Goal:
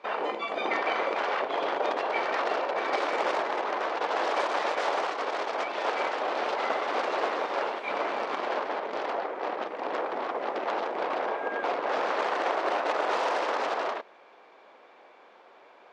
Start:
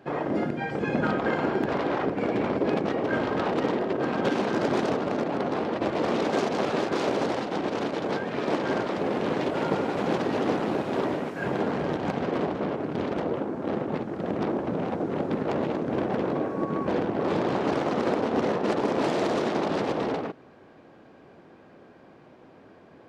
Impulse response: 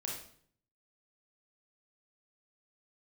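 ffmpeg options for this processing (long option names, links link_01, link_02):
-af "asetrate=63945,aresample=44100,highpass=540,lowpass=4500"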